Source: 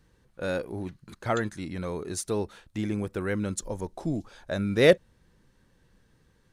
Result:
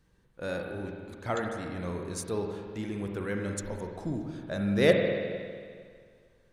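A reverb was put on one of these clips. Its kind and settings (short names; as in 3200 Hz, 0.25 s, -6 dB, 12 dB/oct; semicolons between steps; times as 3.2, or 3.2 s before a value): spring tank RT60 2 s, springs 45/50 ms, chirp 40 ms, DRR 2 dB; gain -4.5 dB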